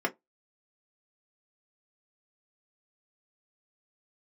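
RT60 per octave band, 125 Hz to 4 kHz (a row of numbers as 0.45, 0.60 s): 0.15, 0.15, 0.15, 0.15, 0.10, 0.10 s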